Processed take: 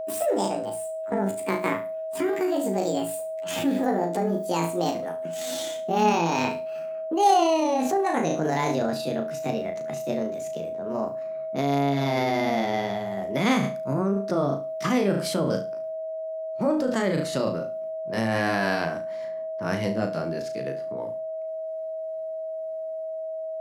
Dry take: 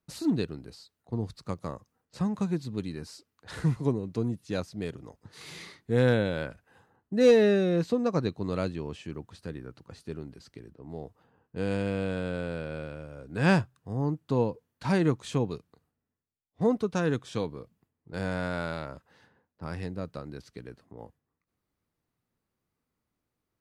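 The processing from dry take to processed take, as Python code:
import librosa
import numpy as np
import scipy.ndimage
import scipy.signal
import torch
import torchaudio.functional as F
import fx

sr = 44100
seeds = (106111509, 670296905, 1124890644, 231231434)

p1 = fx.pitch_glide(x, sr, semitones=12.0, runs='ending unshifted')
p2 = scipy.signal.sosfilt(scipy.signal.butter(4, 120.0, 'highpass', fs=sr, output='sos'), p1)
p3 = fx.hum_notches(p2, sr, base_hz=60, count=5)
p4 = p3 + fx.room_flutter(p3, sr, wall_m=6.1, rt60_s=0.31, dry=0)
p5 = p4 + 10.0 ** (-40.0 / 20.0) * np.sin(2.0 * np.pi * 640.0 * np.arange(len(p4)) / sr)
p6 = fx.over_compress(p5, sr, threshold_db=-34.0, ratio=-1.0)
y = p5 + F.gain(torch.from_numpy(p6), 3.0).numpy()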